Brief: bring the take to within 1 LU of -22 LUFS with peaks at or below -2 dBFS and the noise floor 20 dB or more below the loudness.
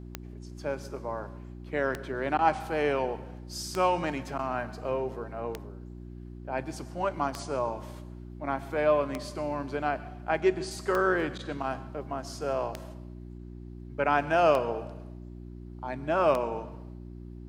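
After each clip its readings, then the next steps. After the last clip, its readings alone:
clicks found 10; hum 60 Hz; highest harmonic 360 Hz; hum level -40 dBFS; loudness -30.0 LUFS; peak level -10.0 dBFS; loudness target -22.0 LUFS
-> de-click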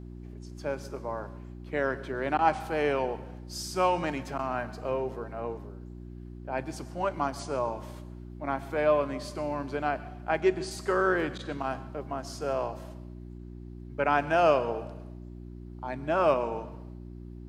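clicks found 0; hum 60 Hz; highest harmonic 360 Hz; hum level -40 dBFS
-> de-hum 60 Hz, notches 6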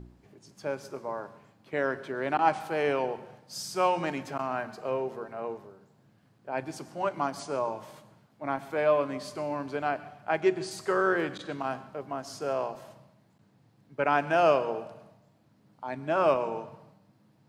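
hum not found; loudness -30.5 LUFS; peak level -9.5 dBFS; loudness target -22.0 LUFS
-> trim +8.5 dB; peak limiter -2 dBFS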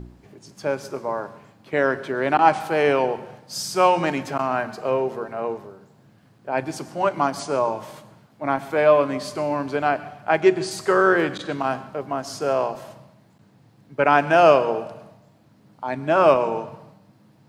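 loudness -22.0 LUFS; peak level -2.0 dBFS; noise floor -56 dBFS

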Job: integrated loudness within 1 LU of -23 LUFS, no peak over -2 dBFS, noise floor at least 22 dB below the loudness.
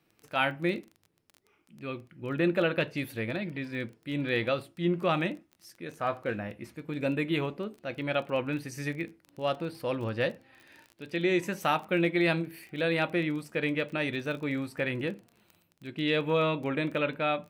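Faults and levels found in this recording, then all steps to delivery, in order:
tick rate 20 per s; loudness -31.0 LUFS; peak level -14.0 dBFS; loudness target -23.0 LUFS
-> de-click; trim +8 dB

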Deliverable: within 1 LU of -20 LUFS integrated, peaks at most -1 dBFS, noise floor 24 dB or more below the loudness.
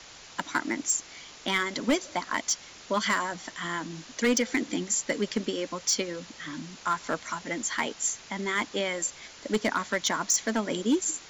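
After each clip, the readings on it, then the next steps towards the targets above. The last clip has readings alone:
clipped samples 0.6%; clipping level -18.0 dBFS; noise floor -49 dBFS; noise floor target -53 dBFS; loudness -29.0 LUFS; peak level -18.0 dBFS; loudness target -20.0 LUFS
-> clip repair -18 dBFS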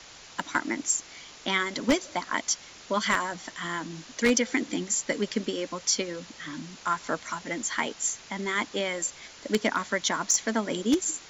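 clipped samples 0.0%; noise floor -49 dBFS; noise floor target -53 dBFS
-> noise reduction 6 dB, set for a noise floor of -49 dBFS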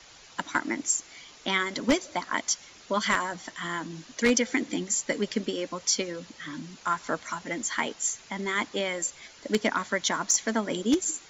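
noise floor -52 dBFS; noise floor target -53 dBFS
-> noise reduction 6 dB, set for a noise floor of -52 dBFS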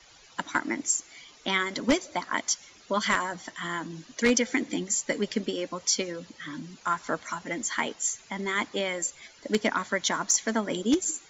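noise floor -55 dBFS; loudness -28.5 LUFS; peak level -8.5 dBFS; loudness target -20.0 LUFS
-> trim +8.5 dB; peak limiter -1 dBFS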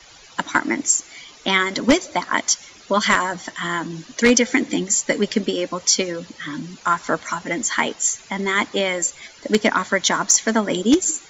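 loudness -20.0 LUFS; peak level -1.0 dBFS; noise floor -46 dBFS

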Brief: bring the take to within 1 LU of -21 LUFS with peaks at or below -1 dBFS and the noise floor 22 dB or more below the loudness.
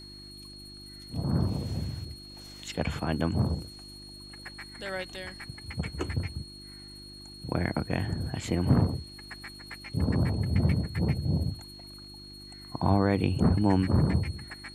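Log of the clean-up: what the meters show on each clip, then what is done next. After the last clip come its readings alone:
hum 50 Hz; highest harmonic 350 Hz; hum level -50 dBFS; steady tone 4.3 kHz; tone level -46 dBFS; loudness -29.5 LUFS; peak level -11.5 dBFS; loudness target -21.0 LUFS
-> de-hum 50 Hz, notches 7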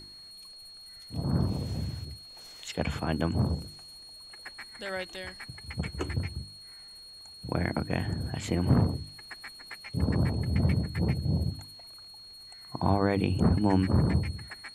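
hum not found; steady tone 4.3 kHz; tone level -46 dBFS
-> band-stop 4.3 kHz, Q 30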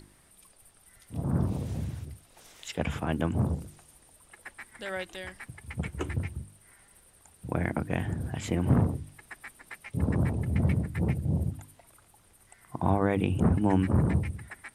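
steady tone not found; loudness -30.0 LUFS; peak level -11.0 dBFS; loudness target -21.0 LUFS
-> trim +9 dB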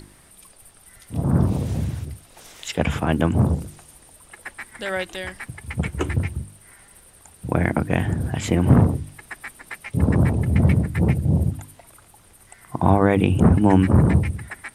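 loudness -21.0 LUFS; peak level -2.0 dBFS; noise floor -52 dBFS

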